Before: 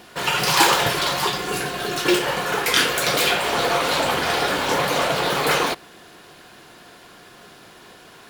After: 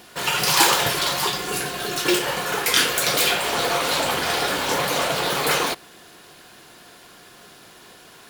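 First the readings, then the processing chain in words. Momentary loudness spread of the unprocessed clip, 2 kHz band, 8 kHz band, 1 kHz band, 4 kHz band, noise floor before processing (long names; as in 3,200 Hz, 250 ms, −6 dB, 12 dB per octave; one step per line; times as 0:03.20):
7 LU, −1.5 dB, +2.5 dB, −2.0 dB, 0.0 dB, −47 dBFS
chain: high-shelf EQ 4,600 Hz +7 dB
level −2.5 dB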